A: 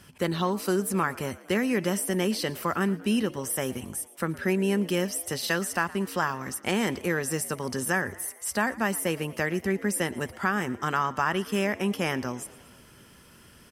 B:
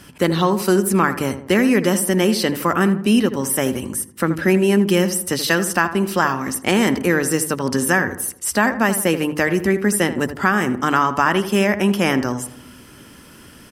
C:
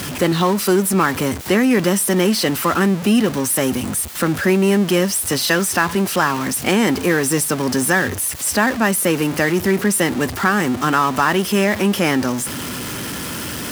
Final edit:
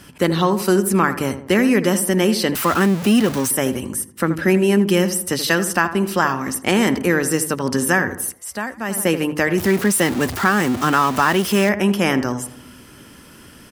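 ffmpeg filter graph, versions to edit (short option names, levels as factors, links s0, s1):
-filter_complex "[2:a]asplit=2[s0][s1];[1:a]asplit=4[s2][s3][s4][s5];[s2]atrim=end=2.552[s6];[s0]atrim=start=2.548:end=3.512[s7];[s3]atrim=start=3.508:end=8.46[s8];[0:a]atrim=start=8.3:end=9.01[s9];[s4]atrim=start=8.85:end=9.582[s10];[s1]atrim=start=9.578:end=11.692[s11];[s5]atrim=start=11.688[s12];[s6][s7]acrossfade=d=0.004:c1=hsin:c2=hsin[s13];[s13][s8]acrossfade=d=0.004:c1=hsin:c2=hsin[s14];[s14][s9]acrossfade=d=0.16:c1=tri:c2=tri[s15];[s15][s10]acrossfade=d=0.16:c1=tri:c2=tri[s16];[s16][s11]acrossfade=d=0.004:c1=hsin:c2=hsin[s17];[s17][s12]acrossfade=d=0.004:c1=hsin:c2=hsin"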